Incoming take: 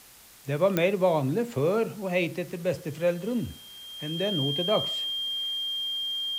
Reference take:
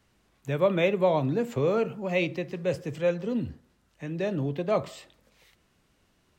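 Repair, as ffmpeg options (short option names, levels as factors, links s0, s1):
-af "adeclick=t=4,bandreject=f=3200:w=30,afwtdn=0.0028"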